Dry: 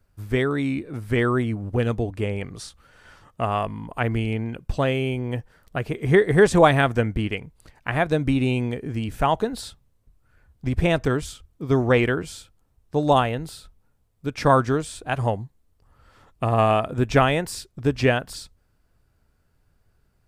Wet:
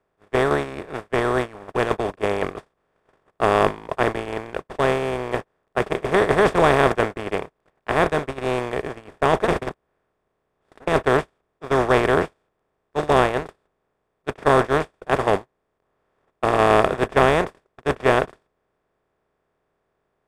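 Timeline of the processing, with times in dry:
0:09.48–0:10.87: reverse
whole clip: compressor on every frequency bin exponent 0.2; bass and treble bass −3 dB, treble −4 dB; noise gate −9 dBFS, range −49 dB; level −5.5 dB

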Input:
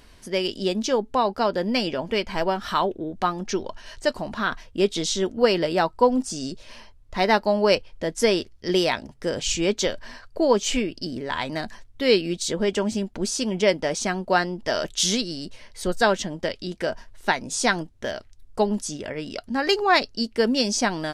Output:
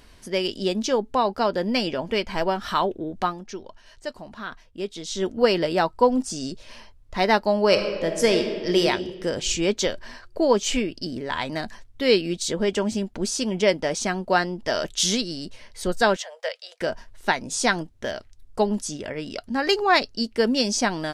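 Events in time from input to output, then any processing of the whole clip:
0:03.22–0:05.27: duck −9.5 dB, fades 0.21 s
0:07.65–0:08.83: thrown reverb, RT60 1.7 s, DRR 4.5 dB
0:16.16–0:16.81: Chebyshev high-pass with heavy ripple 470 Hz, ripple 3 dB

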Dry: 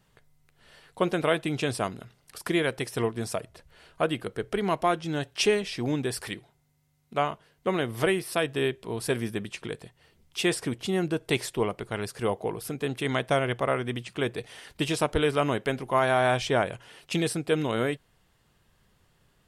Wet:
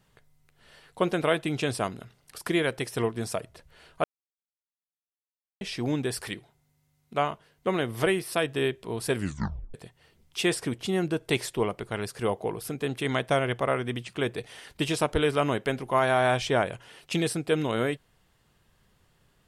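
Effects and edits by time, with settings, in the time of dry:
0:04.04–0:05.61: silence
0:09.15: tape stop 0.59 s

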